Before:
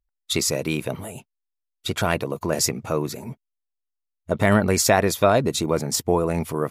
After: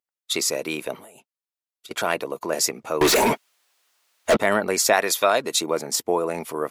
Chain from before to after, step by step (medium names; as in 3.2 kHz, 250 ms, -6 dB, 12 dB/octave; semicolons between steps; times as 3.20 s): high-pass 350 Hz 12 dB/octave; 0.96–1.91 s: compression 16:1, threshold -43 dBFS, peak gain reduction 18.5 dB; 3.01–4.37 s: overdrive pedal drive 40 dB, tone 5.2 kHz, clips at -8.5 dBFS; 4.93–5.62 s: tilt shelf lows -5 dB, about 920 Hz